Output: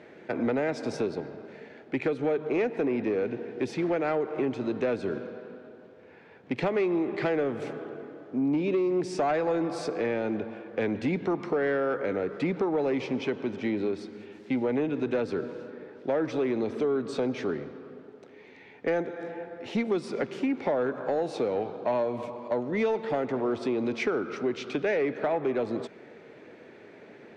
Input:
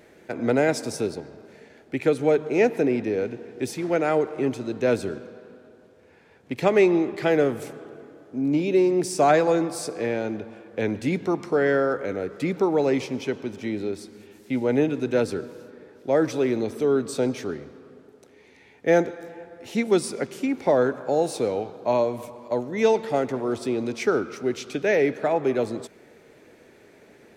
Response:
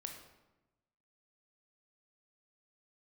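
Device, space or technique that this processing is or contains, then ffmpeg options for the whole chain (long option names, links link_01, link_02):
AM radio: -af "highpass=120,lowpass=3300,acompressor=threshold=-26dB:ratio=4,asoftclip=type=tanh:threshold=-21.5dB,volume=3dB"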